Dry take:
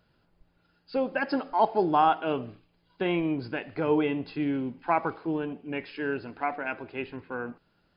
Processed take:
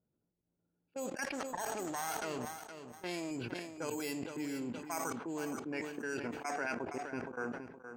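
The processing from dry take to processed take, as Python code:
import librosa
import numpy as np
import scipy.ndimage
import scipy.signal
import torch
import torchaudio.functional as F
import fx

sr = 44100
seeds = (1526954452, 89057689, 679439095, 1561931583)

y = fx.halfwave_gain(x, sr, db=-12.0, at=(1.24, 3.31))
y = np.repeat(y[::6], 6)[:len(y)]
y = fx.env_lowpass(y, sr, base_hz=380.0, full_db=-22.0)
y = fx.high_shelf(y, sr, hz=3000.0, db=9.5)
y = fx.auto_swell(y, sr, attack_ms=149.0)
y = fx.level_steps(y, sr, step_db=21)
y = fx.highpass(y, sr, hz=200.0, slope=6)
y = fx.peak_eq(y, sr, hz=1800.0, db=2.5, octaves=0.77)
y = fx.echo_feedback(y, sr, ms=468, feedback_pct=19, wet_db=-10.0)
y = fx.sustainer(y, sr, db_per_s=56.0)
y = y * 10.0 ** (4.5 / 20.0)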